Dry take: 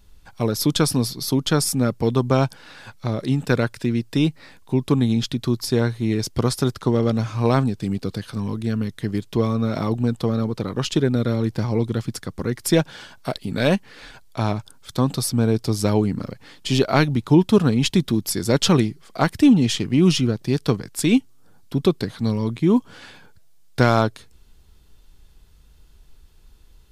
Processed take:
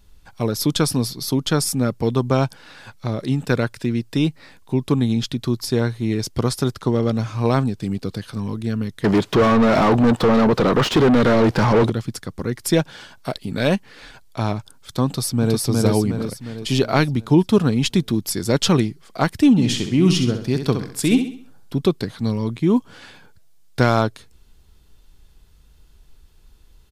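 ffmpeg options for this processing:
-filter_complex "[0:a]asettb=1/sr,asplit=3[s0][s1][s2];[s0]atrim=end=9.044[s3];[s1]atrim=start=9.04:end=11.9,asetpts=PTS-STARTPTS,afade=t=in:d=0.004:c=qsin,afade=t=out:st=2.856:d=0.004:c=qsin,asplit=2[s4][s5];[s5]highpass=f=720:p=1,volume=50.1,asoftclip=type=tanh:threshold=0.473[s6];[s4][s6]amix=inputs=2:normalize=0,lowpass=f=1200:p=1,volume=0.501[s7];[s2]atrim=start=11.896[s8];[s3][s7]acrossfade=d=0.004:c1=hsin:c2=qsin[s9];[s9][s8]acrossfade=d=0.004:c1=qsin:c2=hsin,asplit=2[s10][s11];[s11]afade=t=in:st=15.06:d=0.01,afade=t=out:st=15.63:d=0.01,aecho=0:1:360|720|1080|1440|1800|2160|2520:0.891251|0.445625|0.222813|0.111406|0.0557032|0.0278516|0.0139258[s12];[s10][s12]amix=inputs=2:normalize=0,asplit=3[s13][s14][s15];[s13]afade=t=out:st=19.57:d=0.02[s16];[s14]aecho=1:1:66|132|198|264|330:0.398|0.163|0.0669|0.0274|0.0112,afade=t=in:st=19.57:d=0.02,afade=t=out:st=21.76:d=0.02[s17];[s15]afade=t=in:st=21.76:d=0.02[s18];[s16][s17][s18]amix=inputs=3:normalize=0"

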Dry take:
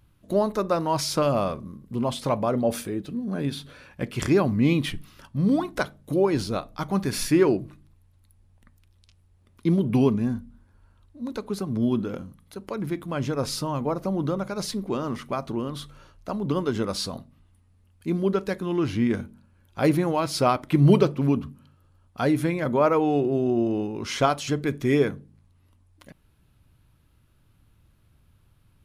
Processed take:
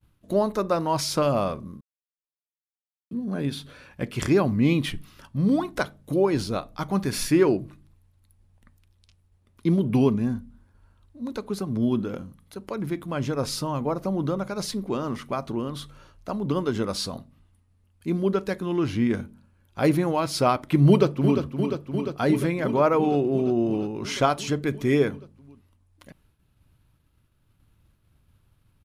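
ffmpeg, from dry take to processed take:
-filter_complex "[0:a]asplit=2[s0][s1];[s1]afade=t=in:st=20.88:d=0.01,afade=t=out:st=21.41:d=0.01,aecho=0:1:350|700|1050|1400|1750|2100|2450|2800|3150|3500|3850|4200:0.421697|0.337357|0.269886|0.215909|0.172727|0.138182|0.110545|0.0884362|0.0707489|0.0565991|0.0452793|0.0362235[s2];[s0][s2]amix=inputs=2:normalize=0,asplit=3[s3][s4][s5];[s3]atrim=end=1.81,asetpts=PTS-STARTPTS,afade=t=out:st=1.806:d=0.004:c=hsin[s6];[s4]atrim=start=1.81:end=3.11,asetpts=PTS-STARTPTS,volume=0[s7];[s5]atrim=start=3.11,asetpts=PTS-STARTPTS,afade=t=in:d=0.004:c=hsin[s8];[s6][s7][s8]concat=n=3:v=0:a=1,agate=range=0.0224:threshold=0.00158:ratio=3:detection=peak"

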